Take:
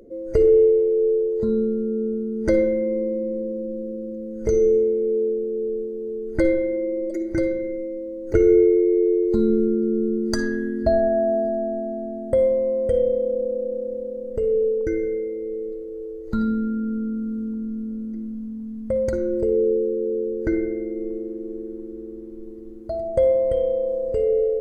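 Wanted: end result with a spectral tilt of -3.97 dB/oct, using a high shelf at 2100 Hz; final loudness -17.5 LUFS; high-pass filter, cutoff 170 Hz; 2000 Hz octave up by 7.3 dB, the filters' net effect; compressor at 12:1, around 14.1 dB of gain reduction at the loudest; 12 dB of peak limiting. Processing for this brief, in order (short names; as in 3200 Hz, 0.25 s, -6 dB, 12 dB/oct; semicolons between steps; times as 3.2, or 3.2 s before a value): HPF 170 Hz; bell 2000 Hz +6.5 dB; high shelf 2100 Hz +4.5 dB; compressor 12:1, threshold -26 dBFS; gain +14.5 dB; limiter -10.5 dBFS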